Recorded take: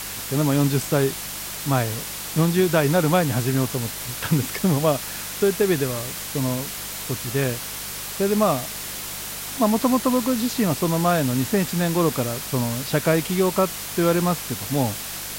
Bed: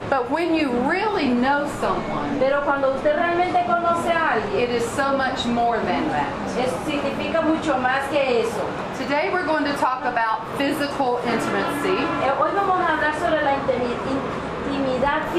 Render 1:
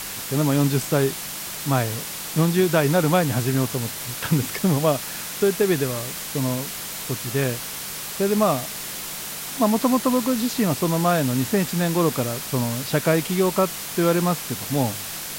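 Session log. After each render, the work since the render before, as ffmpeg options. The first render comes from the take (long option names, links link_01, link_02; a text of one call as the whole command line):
ffmpeg -i in.wav -af "bandreject=frequency=50:width_type=h:width=4,bandreject=frequency=100:width_type=h:width=4" out.wav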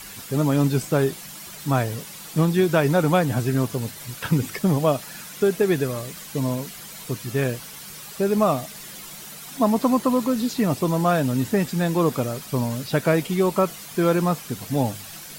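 ffmpeg -i in.wav -af "afftdn=noise_reduction=10:noise_floor=-33" out.wav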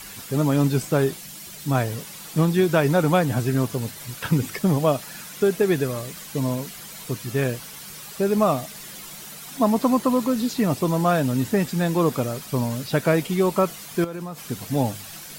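ffmpeg -i in.wav -filter_complex "[0:a]asettb=1/sr,asplit=3[link_01][link_02][link_03];[link_01]atrim=end=1.174[link_04];[link_02]atrim=start=1.17:end=1.75,asetpts=PTS-STARTPTS,afade=type=in:duration=0.004:curve=qsin,afade=type=out:start_time=0.576:duration=0.004:curve=qsin,equalizer=frequency=1100:width=0.86:gain=-5.5[link_05];[link_03]atrim=start=1.746[link_06];[link_04][link_05]acrossfade=duration=0.004:curve1=hsin:curve2=qsin[link_07];[link_07][link_06]acrossfade=duration=0.004:curve1=qsin:curve2=hsin,asettb=1/sr,asplit=3[link_08][link_09][link_10];[link_08]atrim=end=14.044[link_11];[link_09]atrim=start=14.04:end=14.5,asetpts=PTS-STARTPTS,afade=type=in:duration=0.004:curve=qsin,afade=type=out:start_time=0.456:duration=0.004:curve=qsin,acompressor=threshold=-28dB:ratio=20:attack=3.2:release=140:knee=1:detection=peak[link_12];[link_10]atrim=start=14.496[link_13];[link_11][link_12]acrossfade=duration=0.004:curve1=hsin:curve2=qsin[link_14];[link_14][link_13]acrossfade=duration=0.004:curve1=qsin:curve2=hsin" out.wav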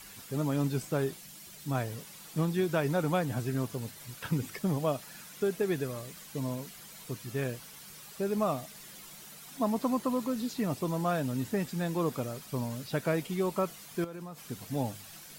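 ffmpeg -i in.wav -af "volume=-10dB" out.wav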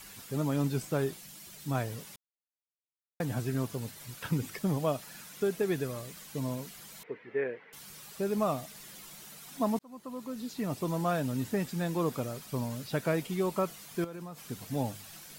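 ffmpeg -i in.wav -filter_complex "[0:a]asettb=1/sr,asplit=3[link_01][link_02][link_03];[link_01]atrim=end=7.034[link_04];[link_02]atrim=start=7.03:end=7.73,asetpts=PTS-STARTPTS,afade=type=in:duration=0.004:curve=qsin,afade=type=out:start_time=0.696:duration=0.004:curve=qsin,highpass=370,equalizer=frequency=440:width_type=q:width=4:gain=10,equalizer=frequency=650:width_type=q:width=4:gain=-5,equalizer=frequency=1200:width_type=q:width=4:gain=-7,equalizer=frequency=2000:width_type=q:width=4:gain=9,lowpass=frequency=2200:width=0.5412,lowpass=frequency=2200:width=1.3066[link_05];[link_03]atrim=start=7.726[link_06];[link_04][link_05]acrossfade=duration=0.004:curve1=hsin:curve2=qsin[link_07];[link_07][link_06]acrossfade=duration=0.004:curve1=qsin:curve2=hsin,asplit=4[link_08][link_09][link_10][link_11];[link_08]atrim=end=2.16,asetpts=PTS-STARTPTS,afade=type=out:start_time=2.156:duration=0.004:curve=hsin[link_12];[link_09]atrim=start=2.16:end=3.2,asetpts=PTS-STARTPTS,volume=0[link_13];[link_10]atrim=start=3.2:end=9.79,asetpts=PTS-STARTPTS,afade=type=in:duration=0.004:curve=hsin,afade=type=out:start_time=6.586:duration=0.004:curve=hsin[link_14];[link_11]atrim=start=9.79,asetpts=PTS-STARTPTS,afade=type=in:duration=1.13[link_15];[link_12][link_13][link_14][link_15]concat=n=4:v=0:a=1" out.wav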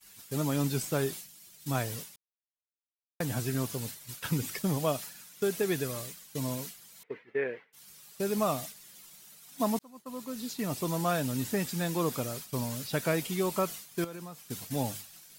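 ffmpeg -i in.wav -af "agate=range=-33dB:threshold=-40dB:ratio=3:detection=peak,highshelf=frequency=2500:gain=8.5" out.wav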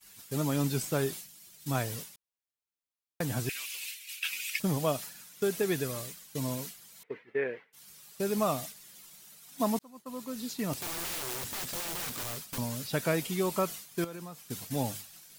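ffmpeg -i in.wav -filter_complex "[0:a]asettb=1/sr,asplit=3[link_01][link_02][link_03];[link_01]atrim=end=3.494[link_04];[link_02]atrim=start=3.49:end=4.6,asetpts=PTS-STARTPTS,afade=type=in:duration=0.004:curve=qsin,afade=type=out:start_time=1.106:duration=0.004:curve=qsin,highpass=frequency=2500:width_type=q:width=5.5[link_05];[link_03]atrim=start=4.596[link_06];[link_04][link_05]acrossfade=duration=0.004:curve1=hsin:curve2=qsin[link_07];[link_07][link_06]acrossfade=duration=0.004:curve1=qsin:curve2=hsin,asettb=1/sr,asplit=3[link_08][link_09][link_10];[link_08]atrim=end=10.734[link_11];[link_09]atrim=start=10.73:end=12.58,asetpts=PTS-STARTPTS,afade=type=in:duration=0.004:curve=qsin,afade=type=out:start_time=1.846:duration=0.004:curve=qsin,aeval=exprs='(mod(37.6*val(0)+1,2)-1)/37.6':channel_layout=same[link_12];[link_10]atrim=start=12.576[link_13];[link_11][link_12]acrossfade=duration=0.004:curve1=hsin:curve2=qsin[link_14];[link_14][link_13]acrossfade=duration=0.004:curve1=qsin:curve2=hsin" out.wav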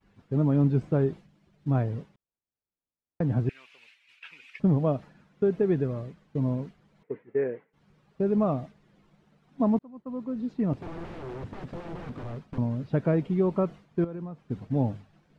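ffmpeg -i in.wav -af "lowpass=2100,tiltshelf=frequency=810:gain=9" out.wav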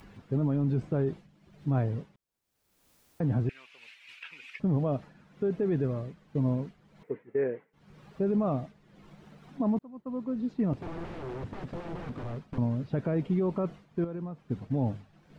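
ffmpeg -i in.wav -af "alimiter=limit=-20.5dB:level=0:latency=1:release=12,acompressor=mode=upward:threshold=-41dB:ratio=2.5" out.wav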